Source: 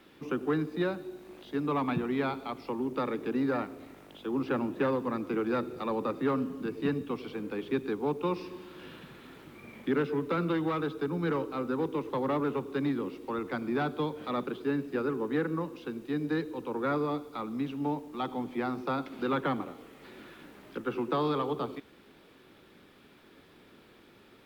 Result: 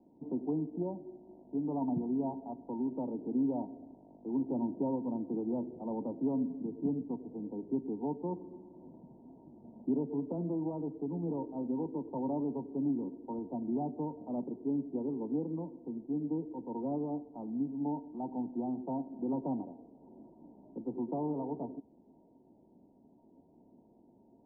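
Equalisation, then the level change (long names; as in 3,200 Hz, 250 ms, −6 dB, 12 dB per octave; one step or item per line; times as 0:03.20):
Chebyshev low-pass with heavy ripple 960 Hz, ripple 9 dB
0.0 dB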